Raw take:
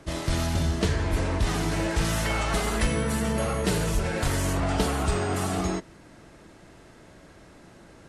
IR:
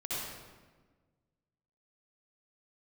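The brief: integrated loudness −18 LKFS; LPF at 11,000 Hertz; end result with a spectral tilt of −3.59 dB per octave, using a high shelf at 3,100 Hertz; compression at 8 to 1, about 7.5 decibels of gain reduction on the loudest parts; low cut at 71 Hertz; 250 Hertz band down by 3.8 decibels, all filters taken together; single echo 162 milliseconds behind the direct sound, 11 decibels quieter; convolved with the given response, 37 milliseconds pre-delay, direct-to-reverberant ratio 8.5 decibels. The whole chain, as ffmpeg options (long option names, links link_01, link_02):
-filter_complex "[0:a]highpass=71,lowpass=11000,equalizer=frequency=250:width_type=o:gain=-5.5,highshelf=frequency=3100:gain=6.5,acompressor=threshold=-29dB:ratio=8,aecho=1:1:162:0.282,asplit=2[link_01][link_02];[1:a]atrim=start_sample=2205,adelay=37[link_03];[link_02][link_03]afir=irnorm=-1:irlink=0,volume=-12.5dB[link_04];[link_01][link_04]amix=inputs=2:normalize=0,volume=13.5dB"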